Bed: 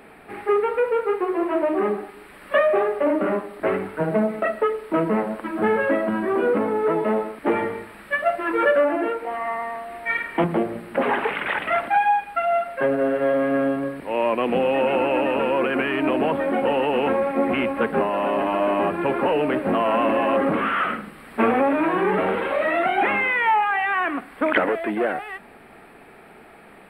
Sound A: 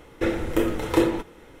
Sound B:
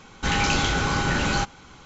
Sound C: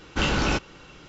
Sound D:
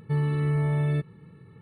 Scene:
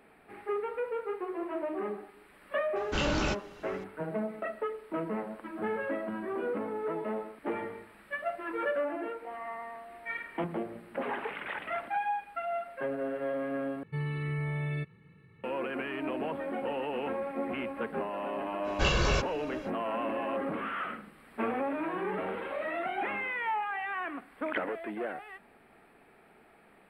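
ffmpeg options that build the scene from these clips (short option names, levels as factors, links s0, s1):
-filter_complex "[3:a]asplit=2[s0][s1];[0:a]volume=0.224[s2];[4:a]equalizer=f=2300:w=1.3:g=11.5[s3];[s1]aecho=1:1:1.8:0.89[s4];[s2]asplit=2[s5][s6];[s5]atrim=end=13.834[s7];[s3]atrim=end=1.61,asetpts=PTS-STARTPTS,volume=0.355[s8];[s6]atrim=start=15.436[s9];[s0]atrim=end=1.08,asetpts=PTS-STARTPTS,volume=0.447,afade=t=in:d=0.004:c=hsin,afade=t=out:st=1.076:d=0.004:c=hsin,adelay=2760[s10];[s4]atrim=end=1.08,asetpts=PTS-STARTPTS,volume=0.501,afade=t=in:d=0.05,afade=t=out:st=1.03:d=0.05,adelay=18630[s11];[s7][s8]acrossfade=d=0.004:c1=hsin:c2=hsin[s12];[s12][s9]acrossfade=d=0.004:c1=hsin:c2=hsin[s13];[s13][s10][s11]amix=inputs=3:normalize=0"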